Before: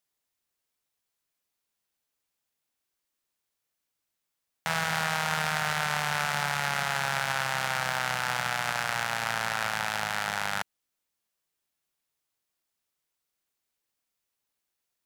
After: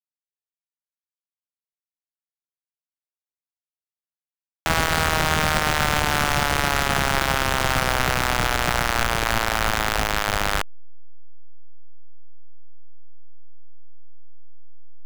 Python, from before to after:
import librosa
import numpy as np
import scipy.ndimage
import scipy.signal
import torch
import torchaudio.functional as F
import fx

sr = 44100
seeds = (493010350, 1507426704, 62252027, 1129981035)

y = fx.delta_hold(x, sr, step_db=-23.0)
y = y * 10.0 ** (7.0 / 20.0)